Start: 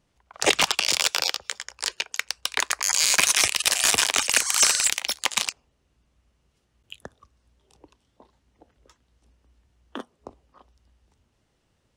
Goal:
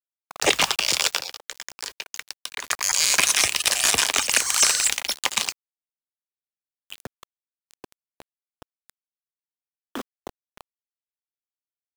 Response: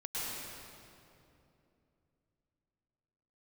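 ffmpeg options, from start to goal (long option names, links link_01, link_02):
-filter_complex "[0:a]aeval=exprs='val(0)+0.5*0.0168*sgn(val(0))':channel_layout=same,acrusher=bits=5:mix=0:aa=0.000001,asettb=1/sr,asplit=3[link_01][link_02][link_03];[link_01]atrim=end=1.174[link_04];[link_02]atrim=start=1.17:end=2.64,asetpts=PTS-STARTPTS,afade=type=in:duration=0.004:curve=qsin,afade=type=out:start_time=1.466:duration=0.004:curve=qsin,acompressor=threshold=-29dB:ratio=6[link_05];[link_03]atrim=start=2.636[link_06];[link_04][link_05]acrossfade=duration=0.004:curve1=hsin:curve2=qsin[link_07];[link_07][link_06]acrossfade=duration=0.004:curve1=qsin:curve2=hsin"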